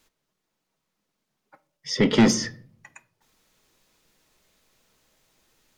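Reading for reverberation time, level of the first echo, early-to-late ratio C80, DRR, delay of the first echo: 0.50 s, no echo audible, 23.0 dB, 9.5 dB, no echo audible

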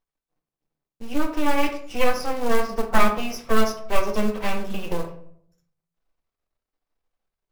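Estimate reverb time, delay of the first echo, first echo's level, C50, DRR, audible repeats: 0.65 s, no echo audible, no echo audible, 9.5 dB, 3.0 dB, no echo audible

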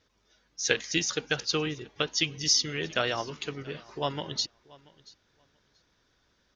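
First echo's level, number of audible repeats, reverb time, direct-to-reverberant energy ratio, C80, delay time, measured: −23.0 dB, 1, no reverb audible, no reverb audible, no reverb audible, 683 ms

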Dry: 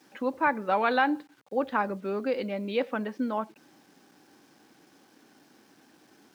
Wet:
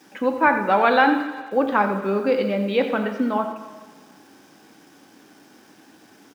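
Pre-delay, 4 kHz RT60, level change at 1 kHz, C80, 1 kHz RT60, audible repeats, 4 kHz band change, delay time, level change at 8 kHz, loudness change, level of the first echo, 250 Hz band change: 8 ms, 1.5 s, +8.0 dB, 7.5 dB, 1.5 s, 1, +7.5 dB, 87 ms, can't be measured, +8.0 dB, −11.5 dB, +8.5 dB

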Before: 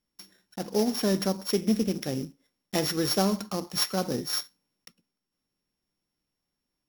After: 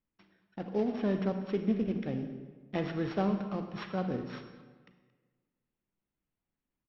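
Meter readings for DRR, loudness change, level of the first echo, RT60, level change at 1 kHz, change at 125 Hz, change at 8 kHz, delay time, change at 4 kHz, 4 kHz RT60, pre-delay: 7.0 dB, −6.0 dB, −19.5 dB, 1.4 s, −5.0 dB, −2.5 dB, below −35 dB, 225 ms, −20.0 dB, 0.95 s, 32 ms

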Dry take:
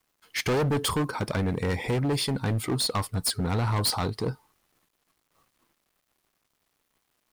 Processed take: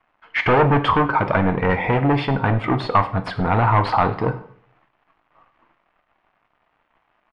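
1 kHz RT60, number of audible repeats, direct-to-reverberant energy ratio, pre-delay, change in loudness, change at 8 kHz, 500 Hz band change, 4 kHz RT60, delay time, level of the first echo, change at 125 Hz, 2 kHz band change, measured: 0.45 s, 1, 8.0 dB, 3 ms, +8.0 dB, below −20 dB, +8.5 dB, 0.50 s, 100 ms, −20.5 dB, +6.5 dB, +11.5 dB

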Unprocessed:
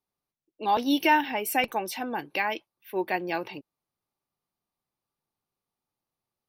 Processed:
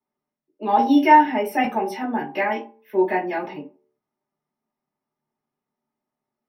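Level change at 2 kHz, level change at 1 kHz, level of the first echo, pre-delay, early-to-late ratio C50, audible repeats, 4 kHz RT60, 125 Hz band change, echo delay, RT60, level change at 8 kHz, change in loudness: +2.5 dB, +8.5 dB, no echo audible, 3 ms, 10.0 dB, no echo audible, 0.20 s, +5.0 dB, no echo audible, 0.45 s, can't be measured, +7.5 dB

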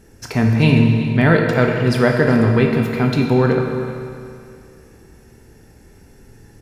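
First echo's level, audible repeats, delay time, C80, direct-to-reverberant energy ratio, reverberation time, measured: −14.5 dB, 1, 382 ms, 4.0 dB, 1.5 dB, 2.4 s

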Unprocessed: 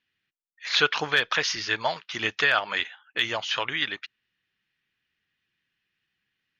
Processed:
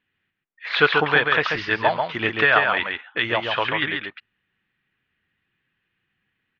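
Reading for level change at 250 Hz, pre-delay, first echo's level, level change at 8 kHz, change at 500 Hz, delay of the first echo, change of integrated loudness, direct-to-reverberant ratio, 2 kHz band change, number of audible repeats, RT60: +9.0 dB, no reverb audible, −4.5 dB, below −15 dB, +8.5 dB, 138 ms, +4.5 dB, no reverb audible, +5.5 dB, 1, no reverb audible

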